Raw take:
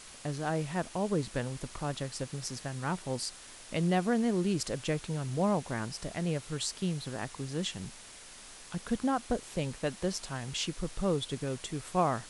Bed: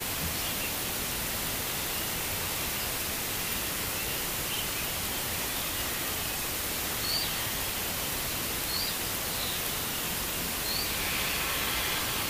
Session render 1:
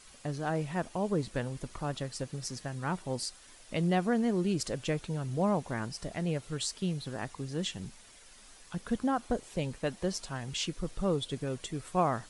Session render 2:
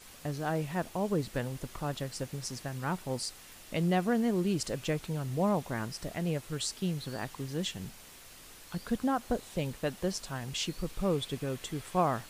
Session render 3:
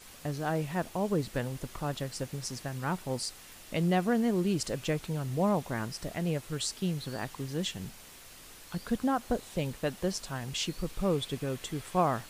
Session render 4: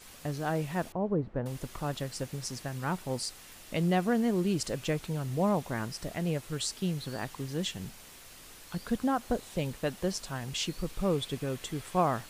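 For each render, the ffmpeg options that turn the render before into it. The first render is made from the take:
-af "afftdn=nr=8:nf=-50"
-filter_complex "[1:a]volume=-22.5dB[a];[0:a][a]amix=inputs=2:normalize=0"
-af "volume=1dB"
-filter_complex "[0:a]asettb=1/sr,asplit=3[a][b][c];[a]atrim=end=0.924[d];[b]atrim=start=0.92:end=1.46,asetpts=PTS-STARTPTS,afade=t=in:d=0.004:c=qsin,afade=t=out:st=0.536:d=0.004:c=qsin,lowpass=1k[e];[c]atrim=start=1.456[f];[d][e]acrossfade=d=0.004:c1=hsin:c2=qsin[g];[g][f]acrossfade=d=0.004:c1=qsin:c2=hsin"

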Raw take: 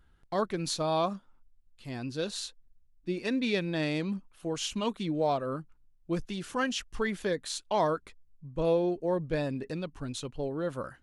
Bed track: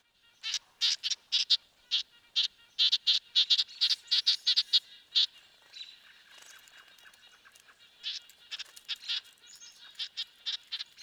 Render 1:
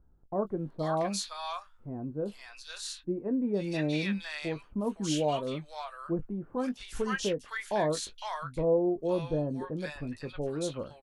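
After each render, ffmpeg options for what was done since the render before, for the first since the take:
-filter_complex "[0:a]asplit=2[a][b];[b]adelay=20,volume=-11dB[c];[a][c]amix=inputs=2:normalize=0,acrossover=split=970|3400[d][e][f];[f]adelay=470[g];[e]adelay=510[h];[d][h][g]amix=inputs=3:normalize=0"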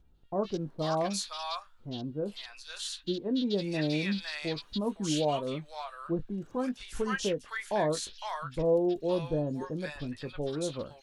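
-filter_complex "[1:a]volume=-16.5dB[a];[0:a][a]amix=inputs=2:normalize=0"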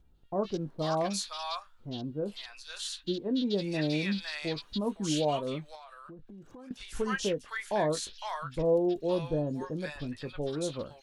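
-filter_complex "[0:a]asettb=1/sr,asplit=3[a][b][c];[a]atrim=end=5.754[d];[b]atrim=start=5.75:end=6.71,asetpts=PTS-STARTPTS,afade=t=in:d=0.004:c=qsin,afade=t=out:st=0.956:d=0.004:c=qsin,acompressor=threshold=-45dB:ratio=10:attack=3.2:release=140:knee=1:detection=peak[e];[c]atrim=start=6.706[f];[d][e]acrossfade=d=0.004:c1=hsin:c2=qsin[g];[g][f]acrossfade=d=0.004:c1=qsin:c2=hsin"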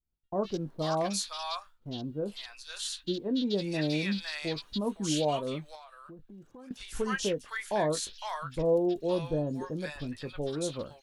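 -af "agate=range=-33dB:threshold=-47dB:ratio=3:detection=peak,highshelf=f=8.4k:g=6"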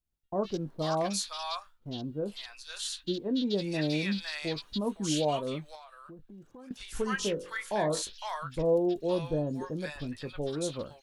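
-filter_complex "[0:a]asplit=3[a][b][c];[a]afade=t=out:st=7.17:d=0.02[d];[b]bandreject=f=45.7:t=h:w=4,bandreject=f=91.4:t=h:w=4,bandreject=f=137.1:t=h:w=4,bandreject=f=182.8:t=h:w=4,bandreject=f=228.5:t=h:w=4,bandreject=f=274.2:t=h:w=4,bandreject=f=319.9:t=h:w=4,bandreject=f=365.6:t=h:w=4,bandreject=f=411.3:t=h:w=4,bandreject=f=457:t=h:w=4,bandreject=f=502.7:t=h:w=4,bandreject=f=548.4:t=h:w=4,bandreject=f=594.1:t=h:w=4,bandreject=f=639.8:t=h:w=4,bandreject=f=685.5:t=h:w=4,bandreject=f=731.2:t=h:w=4,bandreject=f=776.9:t=h:w=4,bandreject=f=822.6:t=h:w=4,bandreject=f=868.3:t=h:w=4,bandreject=f=914:t=h:w=4,bandreject=f=959.7:t=h:w=4,bandreject=f=1.0054k:t=h:w=4,bandreject=f=1.0511k:t=h:w=4,bandreject=f=1.0968k:t=h:w=4,bandreject=f=1.1425k:t=h:w=4,bandreject=f=1.1882k:t=h:w=4,bandreject=f=1.2339k:t=h:w=4,bandreject=f=1.2796k:t=h:w=4,bandreject=f=1.3253k:t=h:w=4,bandreject=f=1.371k:t=h:w=4,bandreject=f=1.4167k:t=h:w=4,bandreject=f=1.4624k:t=h:w=4,bandreject=f=1.5081k:t=h:w=4,afade=t=in:st=7.17:d=0.02,afade=t=out:st=8.01:d=0.02[e];[c]afade=t=in:st=8.01:d=0.02[f];[d][e][f]amix=inputs=3:normalize=0"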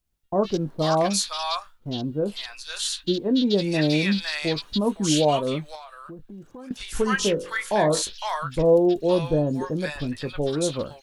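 -af "volume=8.5dB"

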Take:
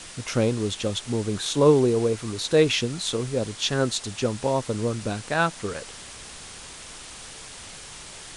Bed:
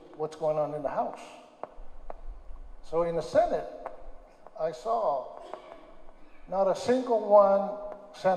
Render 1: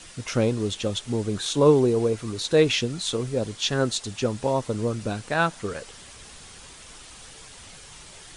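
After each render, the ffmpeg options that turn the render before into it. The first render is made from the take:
-af "afftdn=nr=6:nf=-42"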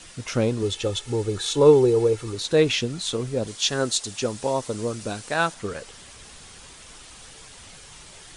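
-filter_complex "[0:a]asettb=1/sr,asplit=3[a][b][c];[a]atrim=end=0.624[d];[b]atrim=start=0.62:end=2.35,asetpts=PTS-STARTPTS,afade=t=in:d=0.004:c=qsin,afade=t=out:st=1.726:d=0.004:c=qsin,aecho=1:1:2.3:0.59,atrim=end_sample=76293[e];[c]atrim=start=2.346[f];[d][e]acrossfade=d=0.004:c1=hsin:c2=qsin[g];[g][f]acrossfade=d=0.004:c1=qsin:c2=hsin,asettb=1/sr,asplit=3[h][i][j];[h]atrim=end=3.474[k];[i]atrim=start=3.47:end=5.54,asetpts=PTS-STARTPTS,afade=t=in:d=0.004:c=qsin,afade=t=out:st=2.066:d=0.004:c=qsin,bass=f=250:g=-5,treble=f=4k:g=6[l];[j]atrim=start=5.536[m];[k][l]acrossfade=d=0.004:c1=hsin:c2=qsin[n];[n][m]acrossfade=d=0.004:c1=qsin:c2=hsin"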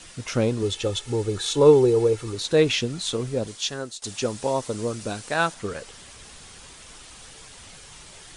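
-filter_complex "[0:a]asplit=2[a][b];[a]atrim=end=4.02,asetpts=PTS-STARTPTS,afade=t=out:st=3.35:d=0.67:silence=0.112202[c];[b]atrim=start=4.02,asetpts=PTS-STARTPTS,afade=t=in:d=0.004:c=hsin:silence=0.112202[d];[c][d]concat=n=2:v=0:a=1"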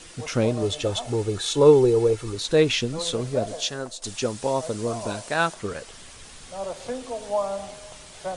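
-filter_complex "[1:a]volume=-6.5dB[a];[0:a][a]amix=inputs=2:normalize=0"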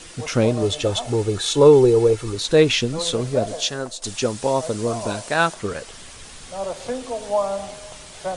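-af "volume=4dB,alimiter=limit=-2dB:level=0:latency=1"

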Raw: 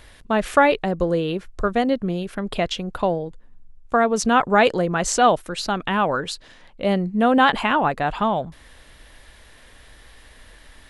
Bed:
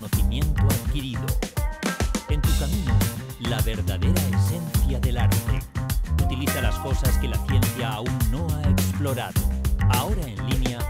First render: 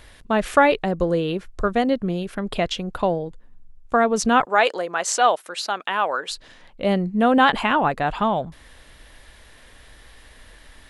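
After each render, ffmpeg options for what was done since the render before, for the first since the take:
-filter_complex "[0:a]asettb=1/sr,asplit=3[a][b][c];[a]atrim=end=4.454[d];[b]atrim=start=4.45:end=6.3,asetpts=PTS-STARTPTS,afade=t=in:d=0.004:c=qsin,afade=t=out:st=1.846:d=0.004:c=qsin,highpass=550[e];[c]atrim=start=6.296[f];[d][e]acrossfade=d=0.004:c1=hsin:c2=qsin[g];[g][f]acrossfade=d=0.004:c1=qsin:c2=hsin"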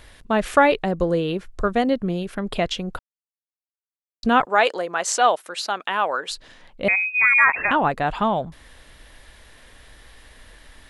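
-filter_complex "[0:a]asettb=1/sr,asplit=3[a][b][c];[a]atrim=end=6.884[d];[b]atrim=start=6.88:end=7.71,asetpts=PTS-STARTPTS,afade=t=in:d=0.004:c=qsin,afade=t=out:st=0.826:d=0.004:c=qsin,lowpass=f=2.3k:t=q:w=0.5098,lowpass=f=2.3k:t=q:w=0.6013,lowpass=f=2.3k:t=q:w=0.9,lowpass=f=2.3k:t=q:w=2.563,afreqshift=-2700[e];[c]atrim=start=7.706[f];[d][e]acrossfade=d=0.004:c1=hsin:c2=qsin[g];[g][f]acrossfade=d=0.004:c1=qsin:c2=hsin,asplit=3[h][i][j];[h]atrim=end=2.99,asetpts=PTS-STARTPTS,afade=t=out:st=2.986:d=0.004:c=hsin[k];[i]atrim=start=2.99:end=4.23,asetpts=PTS-STARTPTS,volume=0[l];[j]atrim=start=4.23,asetpts=PTS-STARTPTS,afade=t=in:d=0.004:c=hsin[m];[k][l][m]concat=n=3:v=0:a=1"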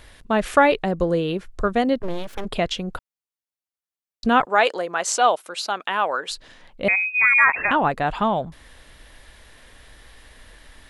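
-filter_complex "[0:a]asplit=3[a][b][c];[a]afade=t=out:st=1.99:d=0.02[d];[b]aeval=exprs='abs(val(0))':c=same,afade=t=in:st=1.99:d=0.02,afade=t=out:st=2.44:d=0.02[e];[c]afade=t=in:st=2.44:d=0.02[f];[d][e][f]amix=inputs=3:normalize=0,asettb=1/sr,asplit=3[g][h][i];[g]atrim=end=5.084[j];[h]atrim=start=5.08:end=5.72,asetpts=PTS-STARTPTS,afade=t=in:d=0.004:c=qsin,afade=t=out:st=0.636:d=0.004:c=qsin,equalizer=f=1.8k:t=o:w=0.26:g=-7[k];[i]atrim=start=5.716[l];[j][k]acrossfade=d=0.004:c1=hsin:c2=qsin[m];[m][l]acrossfade=d=0.004:c1=qsin:c2=hsin"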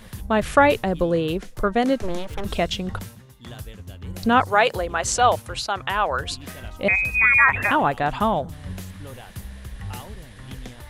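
-filter_complex "[1:a]volume=-13.5dB[a];[0:a][a]amix=inputs=2:normalize=0"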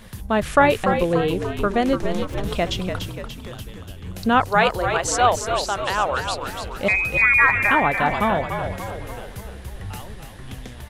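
-filter_complex "[0:a]asplit=8[a][b][c][d][e][f][g][h];[b]adelay=291,afreqshift=-56,volume=-7dB[i];[c]adelay=582,afreqshift=-112,volume=-12.2dB[j];[d]adelay=873,afreqshift=-168,volume=-17.4dB[k];[e]adelay=1164,afreqshift=-224,volume=-22.6dB[l];[f]adelay=1455,afreqshift=-280,volume=-27.8dB[m];[g]adelay=1746,afreqshift=-336,volume=-33dB[n];[h]adelay=2037,afreqshift=-392,volume=-38.2dB[o];[a][i][j][k][l][m][n][o]amix=inputs=8:normalize=0"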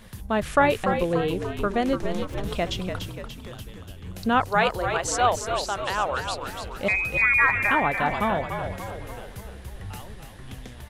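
-af "volume=-4dB"

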